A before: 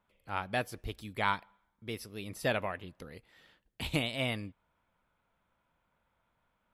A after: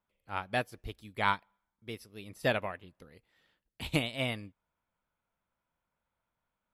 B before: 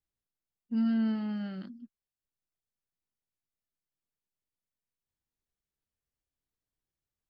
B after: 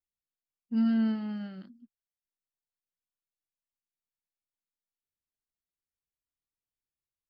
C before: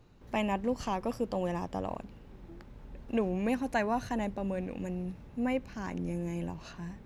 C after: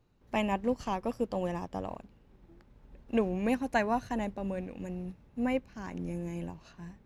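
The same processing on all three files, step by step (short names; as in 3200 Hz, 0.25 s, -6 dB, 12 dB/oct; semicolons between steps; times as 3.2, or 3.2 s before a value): upward expander 1.5:1, over -50 dBFS; gain +2.5 dB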